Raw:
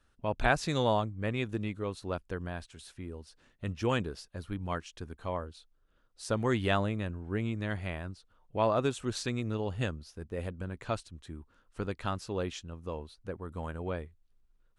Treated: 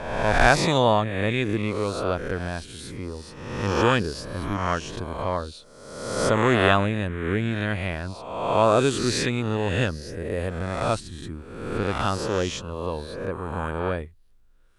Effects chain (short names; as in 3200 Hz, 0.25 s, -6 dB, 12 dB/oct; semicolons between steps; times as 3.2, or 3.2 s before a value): spectral swells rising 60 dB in 1.12 s; gain +7 dB